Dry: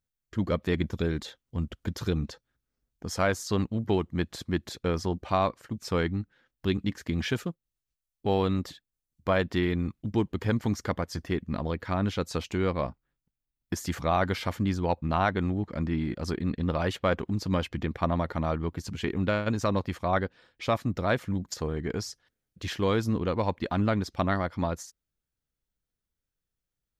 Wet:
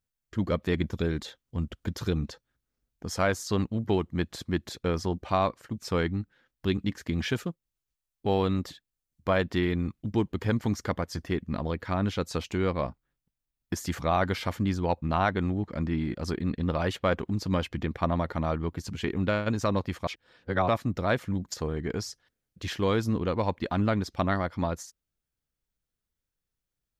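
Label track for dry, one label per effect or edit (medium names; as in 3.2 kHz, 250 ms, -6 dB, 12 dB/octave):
20.070000	20.680000	reverse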